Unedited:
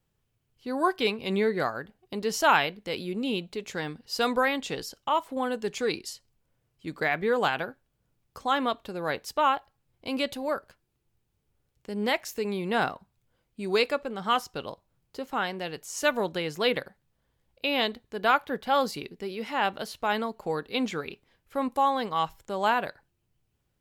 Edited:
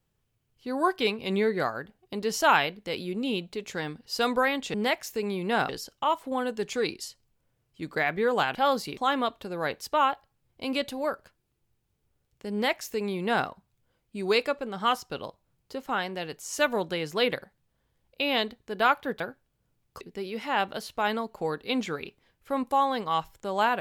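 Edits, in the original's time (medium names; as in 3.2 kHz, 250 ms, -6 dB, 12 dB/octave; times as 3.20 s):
7.60–8.41 s: swap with 18.64–19.06 s
11.96–12.91 s: copy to 4.74 s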